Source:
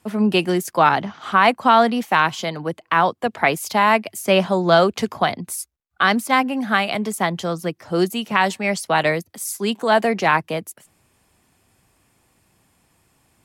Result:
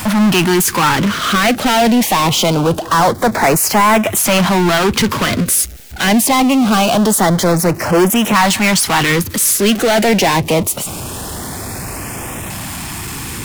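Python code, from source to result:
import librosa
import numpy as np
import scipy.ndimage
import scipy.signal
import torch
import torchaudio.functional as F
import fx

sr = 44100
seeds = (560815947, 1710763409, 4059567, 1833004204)

y = fx.power_curve(x, sr, exponent=0.35)
y = fx.filter_lfo_notch(y, sr, shape='saw_up', hz=0.24, low_hz=400.0, high_hz=4800.0, q=1.4)
y = np.clip(y, -10.0 ** (-6.0 / 20.0), 10.0 ** (-6.0 / 20.0))
y = y * librosa.db_to_amplitude(-1.0)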